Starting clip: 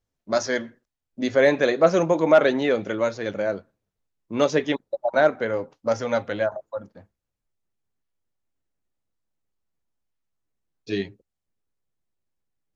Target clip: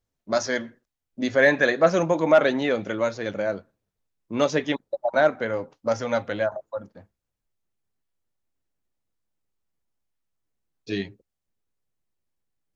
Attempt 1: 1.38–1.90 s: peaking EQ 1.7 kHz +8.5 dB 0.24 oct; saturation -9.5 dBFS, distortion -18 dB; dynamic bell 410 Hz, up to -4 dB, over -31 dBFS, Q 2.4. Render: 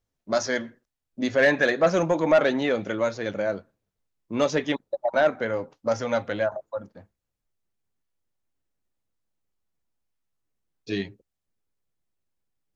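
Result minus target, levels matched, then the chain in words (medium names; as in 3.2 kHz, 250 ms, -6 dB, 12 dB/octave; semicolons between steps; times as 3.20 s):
saturation: distortion +16 dB
1.38–1.90 s: peaking EQ 1.7 kHz +8.5 dB 0.24 oct; saturation 0 dBFS, distortion -33 dB; dynamic bell 410 Hz, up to -4 dB, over -31 dBFS, Q 2.4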